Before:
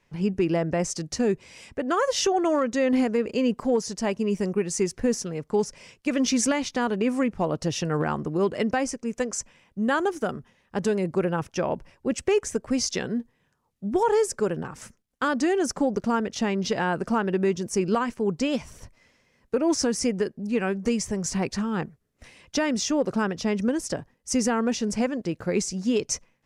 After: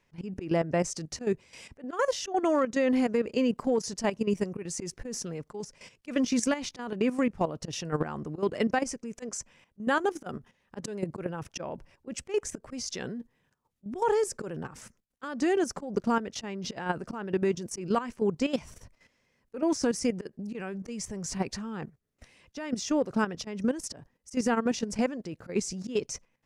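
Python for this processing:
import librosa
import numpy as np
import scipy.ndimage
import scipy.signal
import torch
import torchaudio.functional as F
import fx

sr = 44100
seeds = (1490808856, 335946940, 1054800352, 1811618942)

y = fx.auto_swell(x, sr, attack_ms=111.0)
y = fx.level_steps(y, sr, step_db=12)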